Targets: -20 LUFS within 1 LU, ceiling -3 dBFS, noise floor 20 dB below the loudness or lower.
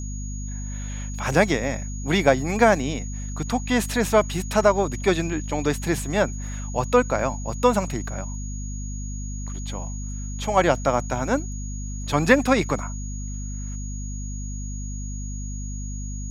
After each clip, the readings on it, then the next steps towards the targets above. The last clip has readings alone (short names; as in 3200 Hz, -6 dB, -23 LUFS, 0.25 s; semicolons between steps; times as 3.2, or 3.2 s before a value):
hum 50 Hz; harmonics up to 250 Hz; hum level -28 dBFS; steady tone 6700 Hz; tone level -39 dBFS; loudness -24.5 LUFS; peak -1.0 dBFS; loudness target -20.0 LUFS
-> de-hum 50 Hz, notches 5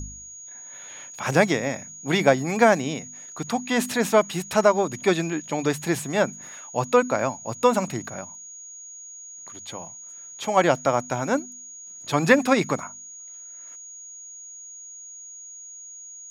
hum none; steady tone 6700 Hz; tone level -39 dBFS
-> notch 6700 Hz, Q 30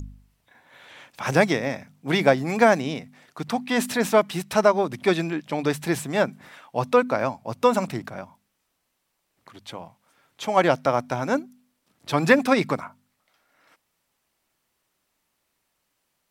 steady tone none; loudness -23.0 LUFS; peak -1.5 dBFS; loudness target -20.0 LUFS
-> gain +3 dB; limiter -3 dBFS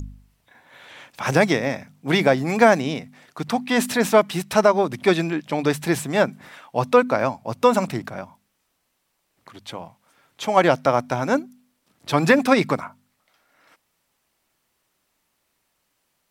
loudness -20.5 LUFS; peak -3.0 dBFS; noise floor -72 dBFS